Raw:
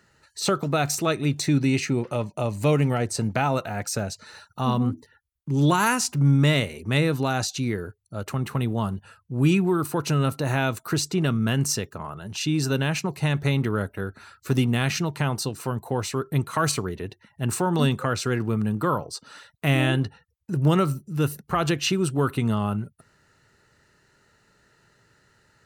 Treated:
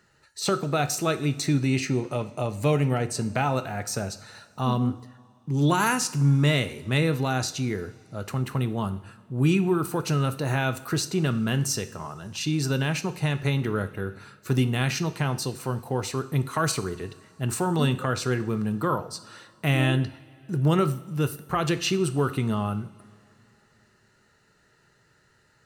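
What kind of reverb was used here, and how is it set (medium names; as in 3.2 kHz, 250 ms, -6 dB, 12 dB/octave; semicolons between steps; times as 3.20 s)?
two-slope reverb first 0.56 s, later 3.1 s, from -18 dB, DRR 10 dB; trim -2 dB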